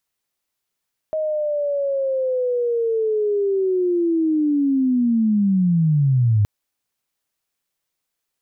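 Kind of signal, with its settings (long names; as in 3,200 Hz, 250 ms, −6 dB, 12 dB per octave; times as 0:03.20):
glide linear 630 Hz → 100 Hz −19.5 dBFS → −13 dBFS 5.32 s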